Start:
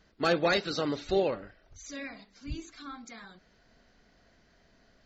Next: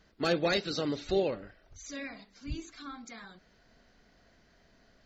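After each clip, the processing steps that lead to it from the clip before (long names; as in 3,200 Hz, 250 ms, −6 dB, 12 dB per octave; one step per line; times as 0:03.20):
dynamic equaliser 1,100 Hz, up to −6 dB, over −42 dBFS, Q 0.83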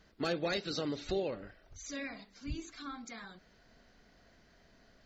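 downward compressor 2 to 1, threshold −35 dBFS, peak gain reduction 6.5 dB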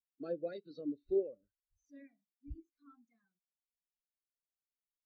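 every bin expanded away from the loudest bin 2.5 to 1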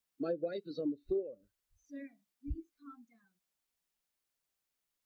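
downward compressor 6 to 1, threshold −41 dBFS, peak gain reduction 13.5 dB
level +9 dB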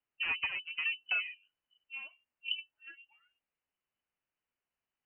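harmonic generator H 6 −12 dB, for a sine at −25 dBFS
voice inversion scrambler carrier 3,000 Hz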